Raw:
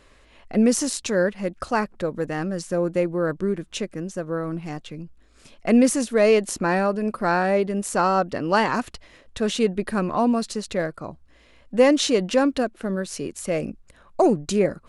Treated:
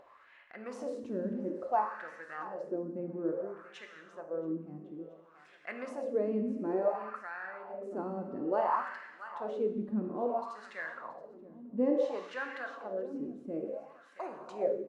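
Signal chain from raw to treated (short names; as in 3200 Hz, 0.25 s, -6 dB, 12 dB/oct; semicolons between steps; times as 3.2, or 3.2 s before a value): 0.71–1.51 zero-crossing step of -29.5 dBFS; feedback echo 0.677 s, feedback 47%, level -15 dB; non-linear reverb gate 0.44 s falling, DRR 3 dB; 7.17–7.91 compressor 6:1, threshold -24 dBFS, peak gain reduction 9 dB; wah 0.58 Hz 230–1800 Hz, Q 3.5; upward compressor, threshold -46 dBFS; bell 830 Hz +3.5 dB 1.6 oct; gain -6.5 dB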